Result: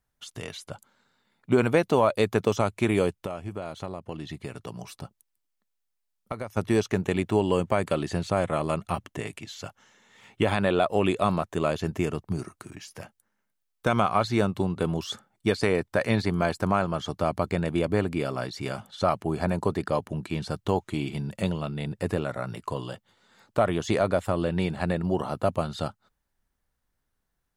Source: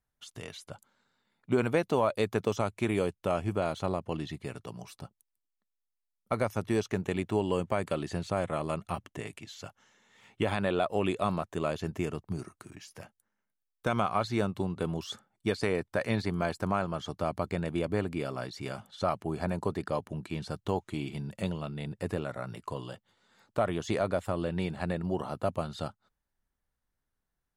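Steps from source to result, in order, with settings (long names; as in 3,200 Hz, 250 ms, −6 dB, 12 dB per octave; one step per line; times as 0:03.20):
0:03.16–0:06.57: downward compressor 5 to 1, threshold −37 dBFS, peak gain reduction 12.5 dB
level +5.5 dB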